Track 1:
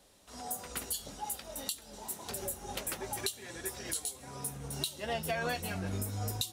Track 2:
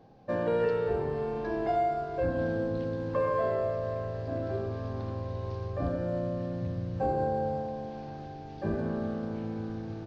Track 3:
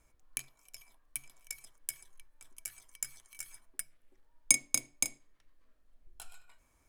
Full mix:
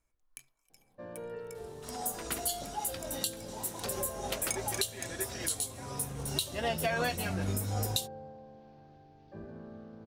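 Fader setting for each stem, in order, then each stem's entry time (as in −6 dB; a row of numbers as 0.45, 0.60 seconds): +3.0, −15.0, −11.5 decibels; 1.55, 0.70, 0.00 seconds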